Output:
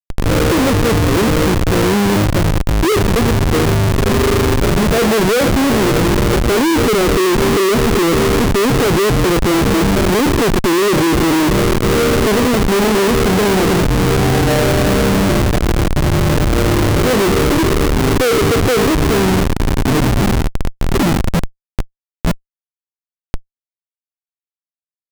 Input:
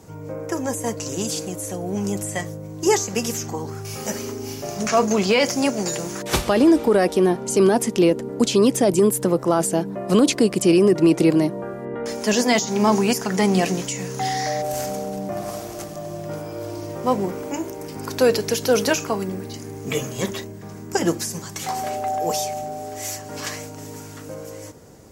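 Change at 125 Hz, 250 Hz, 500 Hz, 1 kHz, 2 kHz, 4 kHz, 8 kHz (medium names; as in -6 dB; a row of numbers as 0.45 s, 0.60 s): +14.0 dB, +7.0 dB, +6.0 dB, +7.5 dB, +10.5 dB, +8.5 dB, +3.0 dB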